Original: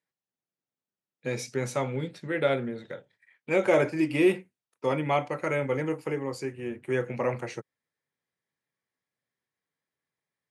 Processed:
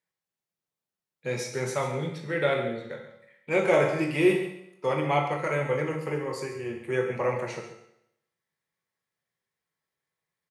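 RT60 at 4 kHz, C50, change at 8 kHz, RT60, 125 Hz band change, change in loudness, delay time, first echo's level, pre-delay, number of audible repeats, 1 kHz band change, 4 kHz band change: 0.75 s, 5.5 dB, +2.0 dB, 0.75 s, +1.5 dB, +1.0 dB, 139 ms, -12.0 dB, 13 ms, 1, +2.5 dB, +2.0 dB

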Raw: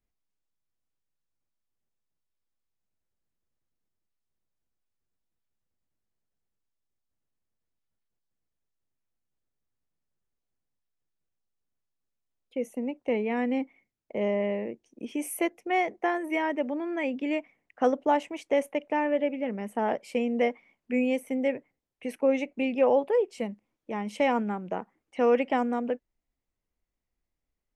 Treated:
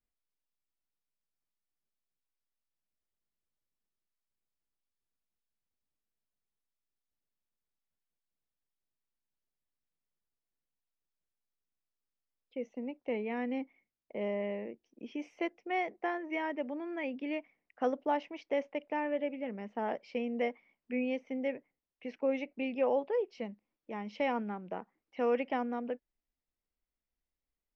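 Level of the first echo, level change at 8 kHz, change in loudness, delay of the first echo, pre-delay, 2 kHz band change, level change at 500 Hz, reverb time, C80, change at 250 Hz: no echo, under -20 dB, -7.5 dB, no echo, no reverb, -6.5 dB, -7.5 dB, no reverb, no reverb, -7.5 dB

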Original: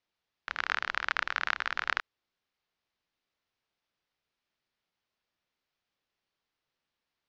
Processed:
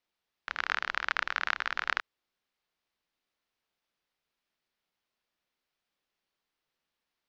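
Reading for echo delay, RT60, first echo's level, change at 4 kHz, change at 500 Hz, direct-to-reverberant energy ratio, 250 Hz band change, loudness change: no echo, no reverb, no echo, 0.0 dB, 0.0 dB, no reverb, -0.5 dB, 0.0 dB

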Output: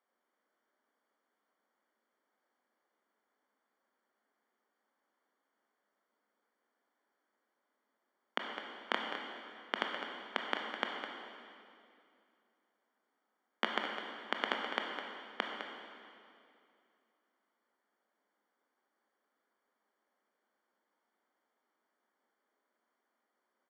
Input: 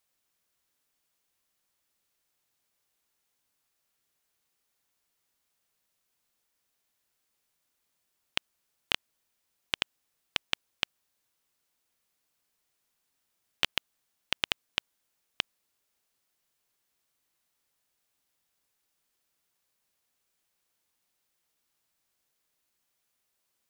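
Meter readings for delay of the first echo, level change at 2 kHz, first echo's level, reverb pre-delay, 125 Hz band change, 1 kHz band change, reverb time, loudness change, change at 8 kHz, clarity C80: 207 ms, -1.5 dB, -9.5 dB, 19 ms, under -10 dB, +6.0 dB, 2.5 s, -5.5 dB, -17.0 dB, 2.5 dB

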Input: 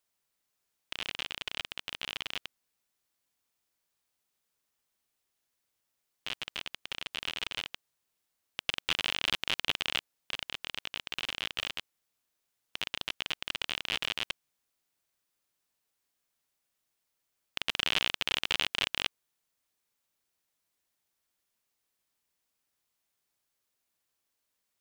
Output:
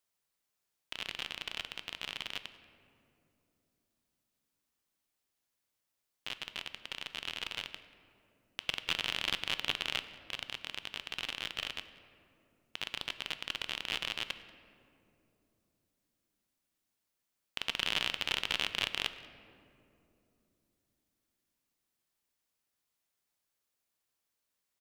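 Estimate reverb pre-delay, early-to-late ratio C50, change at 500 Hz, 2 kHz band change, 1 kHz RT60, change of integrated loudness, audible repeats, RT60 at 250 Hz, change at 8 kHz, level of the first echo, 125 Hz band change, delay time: 7 ms, 12.0 dB, -2.5 dB, -2.5 dB, 2.4 s, -3.0 dB, 1, 4.5 s, -3.0 dB, -22.0 dB, -2.5 dB, 186 ms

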